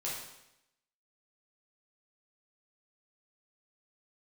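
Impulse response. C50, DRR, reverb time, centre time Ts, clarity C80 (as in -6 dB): 1.0 dB, -7.0 dB, 0.85 s, 59 ms, 4.5 dB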